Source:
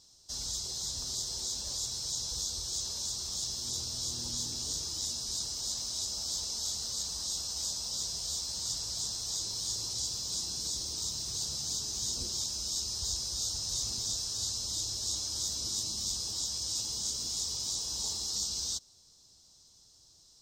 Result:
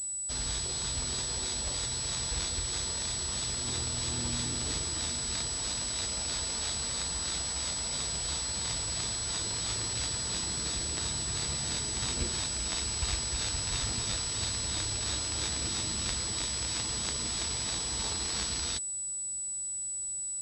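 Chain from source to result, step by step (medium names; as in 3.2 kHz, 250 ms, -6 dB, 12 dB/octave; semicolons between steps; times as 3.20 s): class-D stage that switches slowly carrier 7.9 kHz; trim +9 dB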